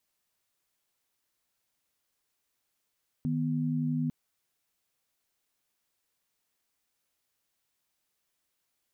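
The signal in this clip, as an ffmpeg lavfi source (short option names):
-f lavfi -i "aevalsrc='0.0335*(sin(2*PI*155.56*t)+sin(2*PI*246.94*t))':d=0.85:s=44100"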